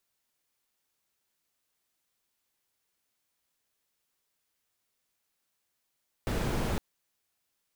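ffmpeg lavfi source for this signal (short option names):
-f lavfi -i "anoisesrc=c=brown:a=0.148:d=0.51:r=44100:seed=1"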